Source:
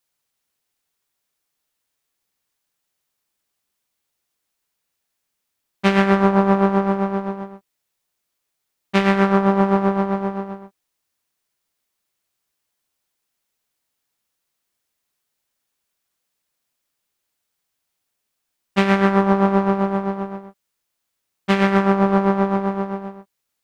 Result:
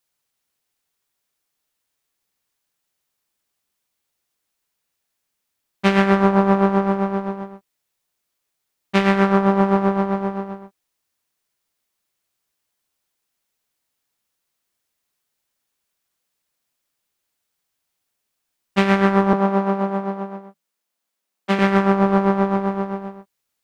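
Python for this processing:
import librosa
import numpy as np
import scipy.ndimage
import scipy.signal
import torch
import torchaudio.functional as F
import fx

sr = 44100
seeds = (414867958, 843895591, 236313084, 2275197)

y = fx.cheby_ripple_highpass(x, sr, hz=160.0, ripple_db=3, at=(19.33, 21.59))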